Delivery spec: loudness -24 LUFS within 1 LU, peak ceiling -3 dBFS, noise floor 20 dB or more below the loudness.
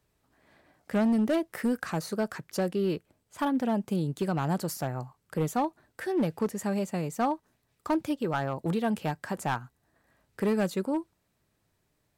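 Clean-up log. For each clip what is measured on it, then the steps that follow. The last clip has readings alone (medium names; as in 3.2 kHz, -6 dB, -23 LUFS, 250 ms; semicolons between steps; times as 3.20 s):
clipped samples 1.3%; clipping level -21.0 dBFS; loudness -30.5 LUFS; peak level -21.0 dBFS; loudness target -24.0 LUFS
-> clip repair -21 dBFS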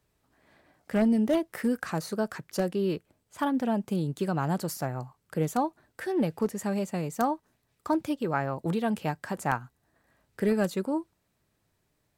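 clipped samples 0.0%; loudness -30.0 LUFS; peak level -12.0 dBFS; loudness target -24.0 LUFS
-> trim +6 dB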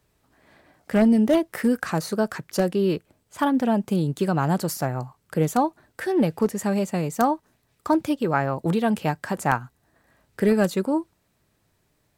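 loudness -24.0 LUFS; peak level -6.0 dBFS; noise floor -69 dBFS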